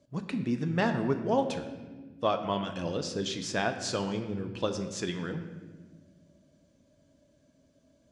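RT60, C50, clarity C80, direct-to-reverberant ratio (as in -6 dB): 1.4 s, 9.0 dB, 10.0 dB, 6.0 dB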